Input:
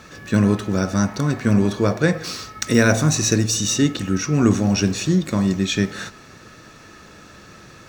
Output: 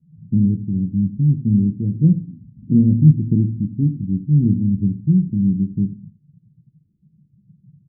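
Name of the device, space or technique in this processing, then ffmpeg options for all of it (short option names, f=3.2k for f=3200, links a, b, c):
the neighbour's flat through the wall: -filter_complex "[0:a]asettb=1/sr,asplit=3[a][b][c];[a]atrim=end=1.944[d];[b]atrim=start=1.94:end=3.72,asetpts=PTS-STARTPTS,afade=t=in:d=0.004:c=qsin,afade=t=out:st=1.776:d=0.004:c=qsin,equalizer=f=270:t=o:w=1.4:g=5.5[e];[c]atrim=start=3.716[f];[d][e]acrossfade=d=0.004:c1=hsin:c2=qsin[g];[g][f]acrossfade=d=0.004:c1=qsin:c2=hsin,lowpass=f=250:w=0.5412,lowpass=f=250:w=1.3066,equalizer=f=150:t=o:w=0.67:g=8,afftdn=nr=21:nf=-28,aecho=1:1:81:0.2,volume=-1dB"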